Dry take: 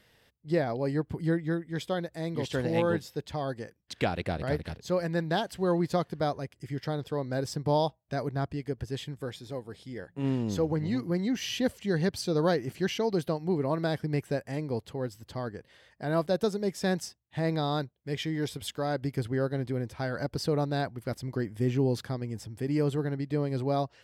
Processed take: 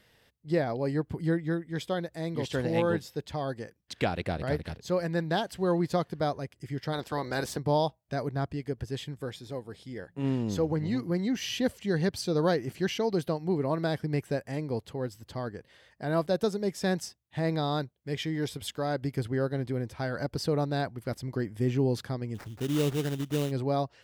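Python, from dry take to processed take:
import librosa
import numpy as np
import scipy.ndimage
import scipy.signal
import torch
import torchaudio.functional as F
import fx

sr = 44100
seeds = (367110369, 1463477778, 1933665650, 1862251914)

y = fx.spec_clip(x, sr, under_db=17, at=(6.92, 7.58), fade=0.02)
y = fx.sample_hold(y, sr, seeds[0], rate_hz=3300.0, jitter_pct=20, at=(22.34, 23.5), fade=0.02)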